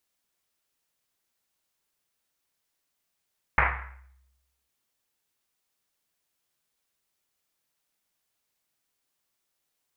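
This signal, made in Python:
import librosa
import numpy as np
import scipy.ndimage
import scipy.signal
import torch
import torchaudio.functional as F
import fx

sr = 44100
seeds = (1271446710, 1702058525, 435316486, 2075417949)

y = fx.risset_drum(sr, seeds[0], length_s=1.1, hz=65.0, decay_s=1.11, noise_hz=1500.0, noise_width_hz=1400.0, noise_pct=65)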